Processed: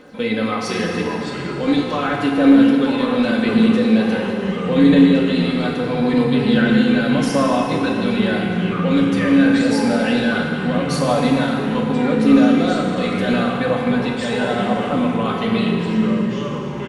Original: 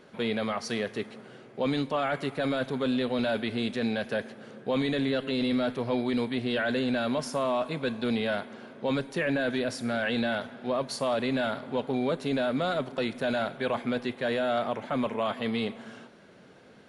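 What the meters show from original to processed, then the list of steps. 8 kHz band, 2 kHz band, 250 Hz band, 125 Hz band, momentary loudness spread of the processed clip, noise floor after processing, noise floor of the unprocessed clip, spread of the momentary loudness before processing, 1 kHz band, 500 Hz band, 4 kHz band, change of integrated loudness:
+10.5 dB, +9.5 dB, +15.5 dB, +15.0 dB, 8 LU, -25 dBFS, -53 dBFS, 6 LU, +10.0 dB, +9.0 dB, +8.5 dB, +12.5 dB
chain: comb 3.9 ms, depth 57%; limiter -19 dBFS, peak gain reduction 4 dB; crackle 46/s -53 dBFS; phaser 0.81 Hz, delay 1 ms, feedback 35%; FDN reverb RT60 2.5 s, low-frequency decay 0.8×, high-frequency decay 0.85×, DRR -0.5 dB; echoes that change speed 0.444 s, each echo -4 st, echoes 3, each echo -6 dB; gain +5 dB

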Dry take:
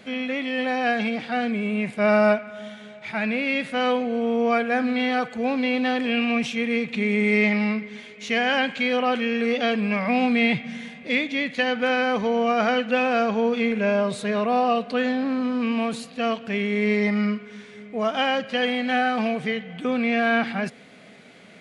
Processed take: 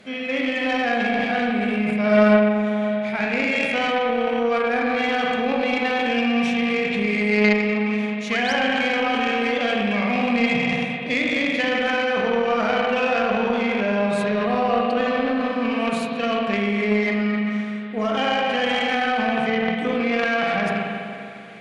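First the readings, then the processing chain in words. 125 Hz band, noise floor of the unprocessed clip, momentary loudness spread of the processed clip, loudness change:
+3.0 dB, -45 dBFS, 4 LU, +2.0 dB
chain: spring tank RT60 2.6 s, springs 38/49 ms, chirp 55 ms, DRR -3.5 dB; painted sound rise, 8.31–8.53, 990–6400 Hz -31 dBFS; in parallel at -1 dB: negative-ratio compressor -22 dBFS, ratio -1; on the sum: added harmonics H 3 -15 dB, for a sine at -1 dBFS; gain -1.5 dB

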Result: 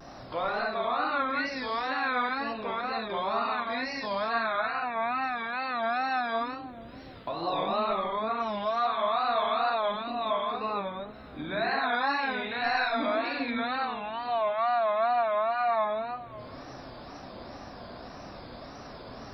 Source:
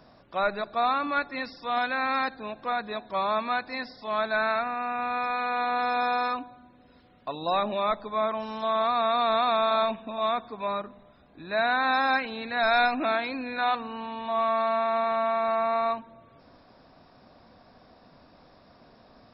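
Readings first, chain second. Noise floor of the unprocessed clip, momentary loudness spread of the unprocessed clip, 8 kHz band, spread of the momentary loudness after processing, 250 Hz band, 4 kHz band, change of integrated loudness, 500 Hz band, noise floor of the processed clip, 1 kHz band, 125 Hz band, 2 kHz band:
-57 dBFS, 10 LU, n/a, 17 LU, -1.0 dB, -2.0 dB, -2.0 dB, -2.0 dB, -45 dBFS, -2.0 dB, +2.0 dB, -2.0 dB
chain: compressor 2.5:1, threshold -45 dBFS, peak gain reduction 17 dB; non-linear reverb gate 0.27 s flat, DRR -4 dB; wow and flutter 130 cents; gain +6.5 dB

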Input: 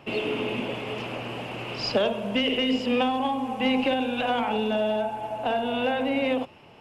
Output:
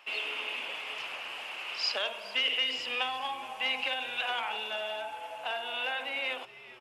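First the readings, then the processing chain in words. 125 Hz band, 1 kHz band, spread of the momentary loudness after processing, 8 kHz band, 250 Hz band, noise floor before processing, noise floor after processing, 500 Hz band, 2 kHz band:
under -25 dB, -8.5 dB, 9 LU, n/a, -28.0 dB, -51 dBFS, -50 dBFS, -15.0 dB, -0.5 dB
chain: HPF 1300 Hz 12 dB/oct; frequency-shifting echo 0.418 s, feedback 34%, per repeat -140 Hz, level -18 dB

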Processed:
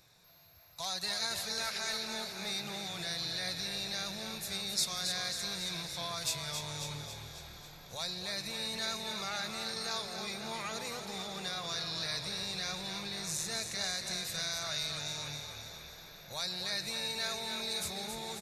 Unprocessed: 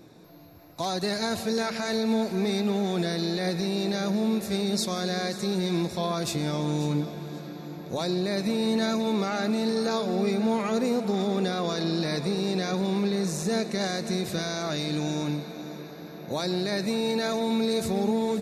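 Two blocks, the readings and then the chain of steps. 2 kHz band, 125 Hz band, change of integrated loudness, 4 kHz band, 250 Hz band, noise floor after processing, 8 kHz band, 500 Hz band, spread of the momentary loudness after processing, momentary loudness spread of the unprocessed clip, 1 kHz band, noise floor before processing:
-4.0 dB, -15.5 dB, -8.0 dB, -0.5 dB, -21.5 dB, -52 dBFS, +0.5 dB, -17.5 dB, 7 LU, 6 LU, -9.5 dB, -42 dBFS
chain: passive tone stack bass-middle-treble 10-0-10; frequency-shifting echo 0.273 s, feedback 56%, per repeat -40 Hz, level -7 dB

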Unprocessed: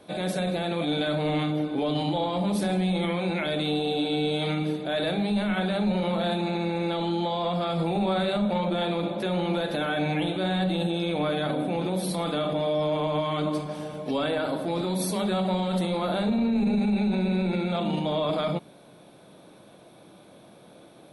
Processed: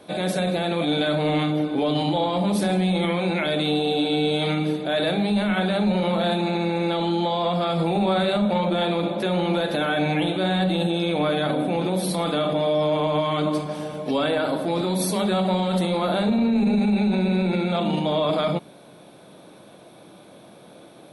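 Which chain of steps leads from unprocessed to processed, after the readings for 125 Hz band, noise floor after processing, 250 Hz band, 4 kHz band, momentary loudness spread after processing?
+3.5 dB, -48 dBFS, +4.0 dB, +4.5 dB, 3 LU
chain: low shelf 77 Hz -6.5 dB; gain +4.5 dB

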